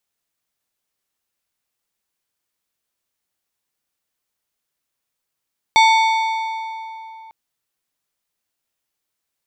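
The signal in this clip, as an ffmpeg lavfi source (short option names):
-f lavfi -i "aevalsrc='0.355*pow(10,-3*t/3.18)*sin(2*PI*892*t)+0.2*pow(10,-3*t/2.416)*sin(2*PI*2230*t)+0.112*pow(10,-3*t/2.098)*sin(2*PI*3568*t)+0.0631*pow(10,-3*t/1.962)*sin(2*PI*4460*t)+0.0355*pow(10,-3*t/1.814)*sin(2*PI*5798*t)+0.02*pow(10,-3*t/1.673)*sin(2*PI*7582*t)+0.0112*pow(10,-3*t/1.645)*sin(2*PI*8028*t)+0.00631*pow(10,-3*t/1.594)*sin(2*PI*8920*t)':d=1.55:s=44100"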